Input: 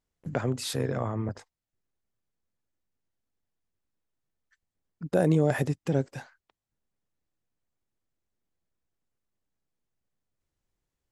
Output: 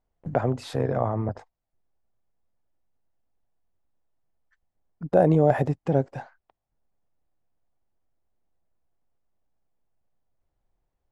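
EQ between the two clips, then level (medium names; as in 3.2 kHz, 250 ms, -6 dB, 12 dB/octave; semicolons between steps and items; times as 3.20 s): low-pass 1.8 kHz 6 dB/octave; bass shelf 62 Hz +10 dB; peaking EQ 730 Hz +9.5 dB 1 oct; +1.0 dB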